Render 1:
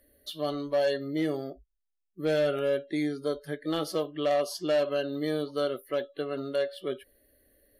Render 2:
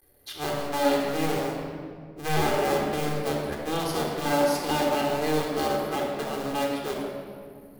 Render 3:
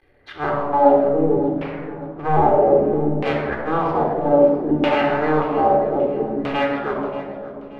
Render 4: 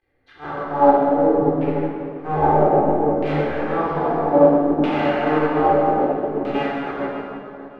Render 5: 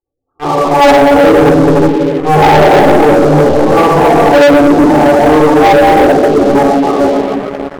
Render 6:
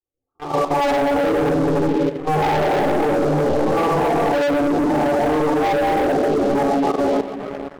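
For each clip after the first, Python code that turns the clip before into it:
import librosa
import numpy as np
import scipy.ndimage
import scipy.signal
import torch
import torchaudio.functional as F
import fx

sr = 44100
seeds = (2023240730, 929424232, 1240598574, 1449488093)

y1 = fx.cycle_switch(x, sr, every=2, mode='muted')
y1 = fx.high_shelf(y1, sr, hz=5800.0, db=5.0)
y1 = fx.room_shoebox(y1, sr, seeds[0], volume_m3=3800.0, walls='mixed', distance_m=3.8)
y2 = fx.filter_lfo_lowpass(y1, sr, shape='saw_down', hz=0.62, low_hz=290.0, high_hz=2700.0, q=2.3)
y2 = fx.echo_feedback(y2, sr, ms=581, feedback_pct=38, wet_db=-16.5)
y2 = y2 * 10.0 ** (5.5 / 20.0)
y3 = fx.rev_plate(y2, sr, seeds[1], rt60_s=3.3, hf_ratio=0.65, predelay_ms=0, drr_db=-5.0)
y3 = fx.upward_expand(y3, sr, threshold_db=-25.0, expansion=1.5)
y3 = y3 * 10.0 ** (-3.5 / 20.0)
y4 = scipy.signal.sosfilt(scipy.signal.ellip(4, 1.0, 40, 1200.0, 'lowpass', fs=sr, output='sos'), y3)
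y4 = fx.spec_gate(y4, sr, threshold_db=-15, keep='strong')
y4 = fx.leveller(y4, sr, passes=5)
y4 = y4 * 10.0 ** (1.0 / 20.0)
y5 = fx.level_steps(y4, sr, step_db=11)
y5 = y5 * 10.0 ** (-6.5 / 20.0)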